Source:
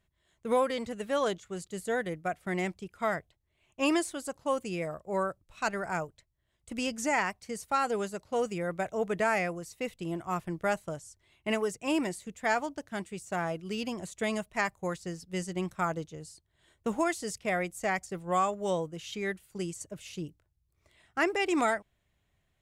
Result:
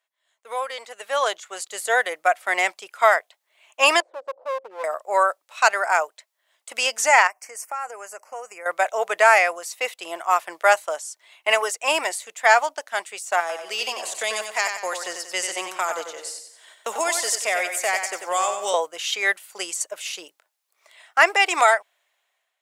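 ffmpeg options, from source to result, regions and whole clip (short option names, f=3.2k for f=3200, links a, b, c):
-filter_complex "[0:a]asettb=1/sr,asplit=3[a][b][c];[a]atrim=end=4.004[d];[b]atrim=start=4:end=4.84,asetpts=PTS-STARTPTS,afade=t=in:d=0.004:c=qsin,afade=t=out:st=0.836:d=0.004:c=qsin,acompressor=threshold=-51dB:ratio=2.5:attack=3.2:release=140:knee=1:detection=peak,lowpass=f=530:t=q:w=5.8,aeval=exprs='clip(val(0),-1,0.00708)':c=same[e];[c]atrim=start=4.836[f];[d][e]acrossfade=d=0.004:c1=hsin:c2=qsin[g];[g][f]acrossfade=d=0.004:c1=qsin:c2=hsin,asettb=1/sr,asplit=3[h][i][j];[h]atrim=end=7.274[k];[i]atrim=start=7.27:end=8.66,asetpts=PTS-STARTPTS,afade=t=in:d=0.004:c=qsin,afade=t=out:st=1.386:d=0.004:c=qsin,asuperstop=centerf=3700:order=4:qfactor=1.3,acompressor=threshold=-42dB:ratio=4:attack=3.2:release=140:knee=1:detection=peak[l];[j]atrim=start=8.656[m];[k][l]acrossfade=d=0.004:c1=hsin:c2=qsin[n];[n][m]acrossfade=d=0.004:c1=qsin:c2=hsin,asettb=1/sr,asplit=3[o][p][q];[o]atrim=end=13.404[r];[p]atrim=start=13.4:end=18.74,asetpts=PTS-STARTPTS,afade=t=in:d=0.004:c=qsin,afade=t=out:st=5.336:d=0.004:c=qsin,acrossover=split=400|3000[s][t][u];[t]acompressor=threshold=-38dB:ratio=6:attack=3.2:release=140:knee=2.83:detection=peak[v];[s][v][u]amix=inputs=3:normalize=0,aecho=1:1:93|186|279|372|465:0.447|0.183|0.0751|0.0308|0.0126,atrim=end_sample=235494[w];[q]atrim=start=18.736[x];[r][w]acrossfade=d=0.004:c1=hsin:c2=qsin[y];[y][x]acrossfade=d=0.004:c1=qsin:c2=hsin,highpass=f=630:w=0.5412,highpass=f=630:w=1.3066,dynaudnorm=f=520:g=5:m=15.5dB,volume=1dB"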